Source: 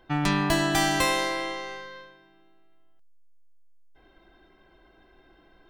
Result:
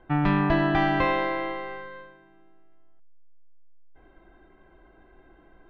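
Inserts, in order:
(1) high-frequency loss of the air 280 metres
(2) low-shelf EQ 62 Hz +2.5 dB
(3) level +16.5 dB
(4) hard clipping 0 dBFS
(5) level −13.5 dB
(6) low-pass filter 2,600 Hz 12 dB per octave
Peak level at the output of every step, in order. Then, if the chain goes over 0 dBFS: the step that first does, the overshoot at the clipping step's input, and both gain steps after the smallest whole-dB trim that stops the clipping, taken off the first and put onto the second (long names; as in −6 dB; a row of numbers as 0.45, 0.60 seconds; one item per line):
−12.5, −12.0, +4.5, 0.0, −13.5, −13.0 dBFS
step 3, 4.5 dB
step 3 +11.5 dB, step 5 −8.5 dB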